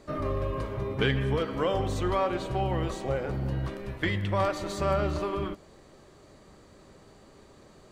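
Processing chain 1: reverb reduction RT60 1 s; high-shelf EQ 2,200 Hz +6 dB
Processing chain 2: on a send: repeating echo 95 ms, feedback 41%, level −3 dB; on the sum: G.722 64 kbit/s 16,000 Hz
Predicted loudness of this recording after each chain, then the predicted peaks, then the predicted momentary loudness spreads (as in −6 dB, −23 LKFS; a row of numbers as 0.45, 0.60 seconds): −30.5, −28.0 LKFS; −11.5, −11.5 dBFS; 8, 6 LU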